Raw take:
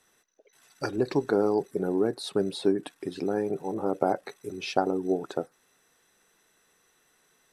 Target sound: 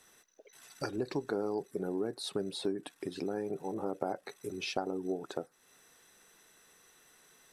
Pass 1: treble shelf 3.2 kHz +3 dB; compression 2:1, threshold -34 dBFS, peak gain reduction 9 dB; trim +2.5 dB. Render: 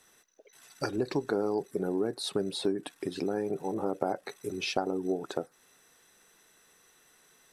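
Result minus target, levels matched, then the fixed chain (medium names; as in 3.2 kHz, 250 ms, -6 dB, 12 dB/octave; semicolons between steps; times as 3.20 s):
compression: peak gain reduction -4.5 dB
treble shelf 3.2 kHz +3 dB; compression 2:1, threshold -43 dBFS, peak gain reduction 13.5 dB; trim +2.5 dB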